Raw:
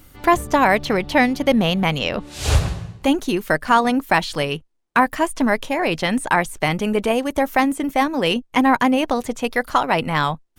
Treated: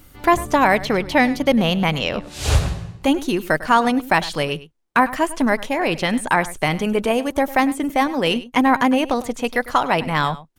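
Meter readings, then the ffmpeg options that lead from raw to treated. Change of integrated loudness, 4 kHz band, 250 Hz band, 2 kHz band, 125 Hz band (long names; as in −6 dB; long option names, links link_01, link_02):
0.0 dB, 0.0 dB, 0.0 dB, 0.0 dB, 0.0 dB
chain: -af "aecho=1:1:101:0.141"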